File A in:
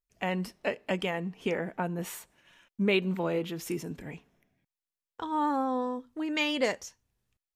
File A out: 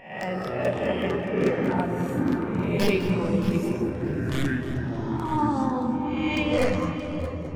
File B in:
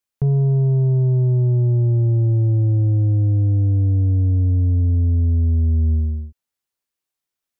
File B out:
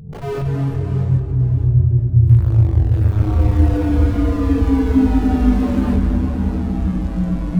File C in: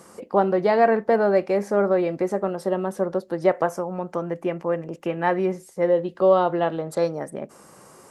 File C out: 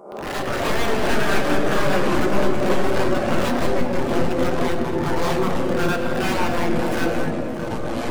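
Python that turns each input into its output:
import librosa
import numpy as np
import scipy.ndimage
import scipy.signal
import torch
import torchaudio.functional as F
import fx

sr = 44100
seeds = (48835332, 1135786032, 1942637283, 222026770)

p1 = fx.spec_swells(x, sr, rise_s=1.18)
p2 = fx.rider(p1, sr, range_db=3, speed_s=0.5)
p3 = p1 + (p2 * librosa.db_to_amplitude(-2.0))
p4 = fx.transient(p3, sr, attack_db=5, sustain_db=-3)
p5 = (np.mod(10.0 ** (9.0 / 20.0) * p4 + 1.0, 2.0) - 1.0) / 10.0 ** (9.0 / 20.0)
p6 = p5 + fx.echo_heads(p5, sr, ms=208, heads='first and third', feedback_pct=47, wet_db=-10, dry=0)
p7 = fx.room_shoebox(p6, sr, seeds[0], volume_m3=210.0, walls='hard', distance_m=0.37)
p8 = fx.echo_pitch(p7, sr, ms=128, semitones=-7, count=2, db_per_echo=-3.0)
p9 = fx.spectral_expand(p8, sr, expansion=1.5)
y = p9 * librosa.db_to_amplitude(-8.5)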